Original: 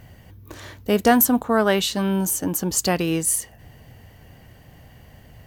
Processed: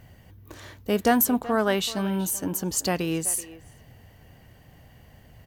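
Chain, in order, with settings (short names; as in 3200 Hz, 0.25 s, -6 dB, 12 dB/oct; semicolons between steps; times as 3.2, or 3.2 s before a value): speakerphone echo 0.38 s, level -15 dB; gain -4.5 dB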